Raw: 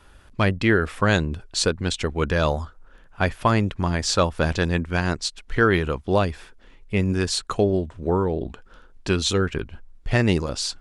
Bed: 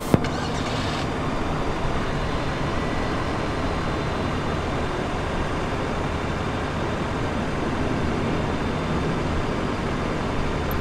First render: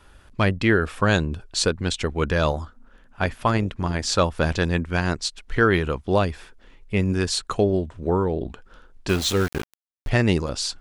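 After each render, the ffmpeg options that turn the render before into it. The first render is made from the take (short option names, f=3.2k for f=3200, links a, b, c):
-filter_complex "[0:a]asettb=1/sr,asplit=3[a][b][c];[a]atrim=end=0.734[d];[b]atrim=start=0.73:end=1.49,asetpts=PTS-STARTPTS,afade=t=in:d=0.004:c=qsin,afade=t=out:st=0.756:d=0.004:c=qsin,bandreject=f=2k:w=9.5[e];[c]atrim=start=1.486[f];[d][e]acrossfade=d=0.004:c1=hsin:c2=qsin[g];[g][f]acrossfade=d=0.004:c1=qsin:c2=hsin,asettb=1/sr,asplit=3[h][i][j];[h]atrim=end=2.514[k];[i]atrim=start=2.51:end=4.12,asetpts=PTS-STARTPTS,afade=t=in:d=0.004:c=qsin,afade=t=out:st=1.606:d=0.004:c=qsin,tremolo=f=240:d=0.4[l];[j]atrim=start=4.116[m];[k][l]acrossfade=d=0.004:c1=hsin:c2=qsin[n];[n][m]acrossfade=d=0.004:c1=qsin:c2=hsin,asettb=1/sr,asplit=3[o][p][q];[o]atrim=end=9.094[r];[p]atrim=start=9.09:end=10.09,asetpts=PTS-STARTPTS,afade=t=in:d=0.004:c=qsin,afade=t=out:st=0.996:d=0.004:c=qsin,aeval=exprs='val(0)*gte(abs(val(0)),0.0422)':c=same[s];[q]atrim=start=10.086[t];[r][s]acrossfade=d=0.004:c1=hsin:c2=qsin[u];[u][t]acrossfade=d=0.004:c1=qsin:c2=hsin"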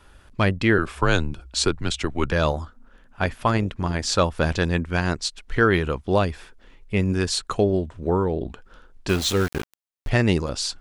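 -filter_complex "[0:a]asettb=1/sr,asplit=3[a][b][c];[a]atrim=end=0.784[d];[b]atrim=start=0.78:end=2.32,asetpts=PTS-STARTPTS,afade=t=in:d=0.004:c=qsin,afade=t=out:st=1.536:d=0.004:c=qsin,afreqshift=-79[e];[c]atrim=start=2.316[f];[d][e]acrossfade=d=0.004:c1=hsin:c2=qsin[g];[g][f]acrossfade=d=0.004:c1=qsin:c2=hsin"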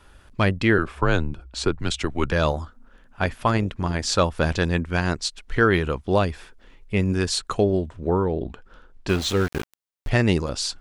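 -filter_complex "[0:a]asettb=1/sr,asplit=3[a][b][c];[a]atrim=end=0.834[d];[b]atrim=start=0.83:end=1.8,asetpts=PTS-STARTPTS,afade=t=in:d=0.004:c=qsin,afade=t=out:st=0.966:d=0.004:c=qsin,highshelf=f=3.2k:g=-10.5[e];[c]atrim=start=1.796[f];[d][e]acrossfade=d=0.004:c1=hsin:c2=qsin[g];[g][f]acrossfade=d=0.004:c1=qsin:c2=hsin,asettb=1/sr,asplit=3[h][i][j];[h]atrim=end=7.964[k];[i]atrim=start=7.96:end=9.54,asetpts=PTS-STARTPTS,afade=t=in:d=0.004:c=qsin,afade=t=out:st=1.576:d=0.004:c=qsin,highshelf=f=6k:g=-7.5[l];[j]atrim=start=9.536[m];[k][l]acrossfade=d=0.004:c1=hsin:c2=qsin[n];[n][m]acrossfade=d=0.004:c1=qsin:c2=hsin"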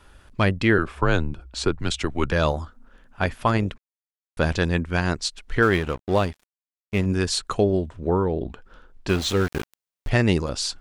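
-filter_complex "[0:a]asettb=1/sr,asplit=3[a][b][c];[a]atrim=end=5.624[d];[b]atrim=start=5.62:end=7.06,asetpts=PTS-STARTPTS,afade=t=in:d=0.004:c=qsin,afade=t=out:st=1.436:d=0.004:c=qsin,aeval=exprs='sgn(val(0))*max(abs(val(0))-0.0168,0)':c=same[e];[c]atrim=start=7.056[f];[d][e]acrossfade=d=0.004:c1=hsin:c2=qsin[g];[g][f]acrossfade=d=0.004:c1=qsin:c2=hsin,asplit=3[h][i][j];[h]atrim=end=3.78,asetpts=PTS-STARTPTS,afade=t=out:st=3.776:d=0.004:c=hsin[k];[i]atrim=start=3.78:end=4.37,asetpts=PTS-STARTPTS,volume=0[l];[j]atrim=start=4.37,asetpts=PTS-STARTPTS,afade=t=in:d=0.004:c=hsin[m];[k][l][m]concat=n=3:v=0:a=1"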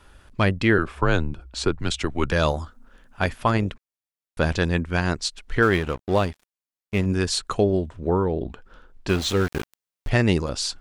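-filter_complex "[0:a]asettb=1/sr,asplit=3[a][b][c];[a]atrim=end=2.294[d];[b]atrim=start=2.29:end=3.33,asetpts=PTS-STARTPTS,afade=t=in:d=0.004:c=qsin,afade=t=out:st=1.036:d=0.004:c=qsin,highshelf=f=4.8k:g=6[e];[c]atrim=start=3.326[f];[d][e]acrossfade=d=0.004:c1=hsin:c2=qsin[g];[g][f]acrossfade=d=0.004:c1=qsin:c2=hsin"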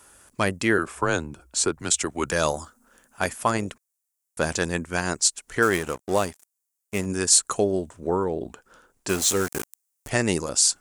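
-af "highpass=f=290:p=1,highshelf=f=5.4k:t=q:w=1.5:g=12.5"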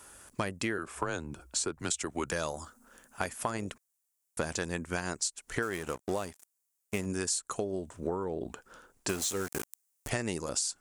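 -af "acompressor=threshold=-29dB:ratio=12"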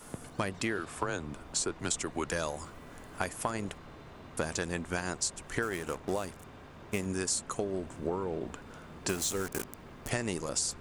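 -filter_complex "[1:a]volume=-24.5dB[a];[0:a][a]amix=inputs=2:normalize=0"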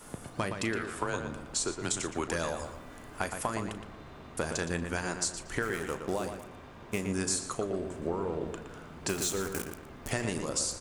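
-filter_complex "[0:a]asplit=2[a][b];[b]adelay=36,volume=-13dB[c];[a][c]amix=inputs=2:normalize=0,asplit=2[d][e];[e]adelay=117,lowpass=f=3.4k:p=1,volume=-6.5dB,asplit=2[f][g];[g]adelay=117,lowpass=f=3.4k:p=1,volume=0.4,asplit=2[h][i];[i]adelay=117,lowpass=f=3.4k:p=1,volume=0.4,asplit=2[j][k];[k]adelay=117,lowpass=f=3.4k:p=1,volume=0.4,asplit=2[l][m];[m]adelay=117,lowpass=f=3.4k:p=1,volume=0.4[n];[d][f][h][j][l][n]amix=inputs=6:normalize=0"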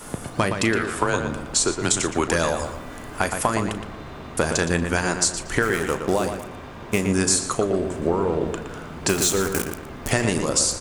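-af "volume=11dB,alimiter=limit=-3dB:level=0:latency=1"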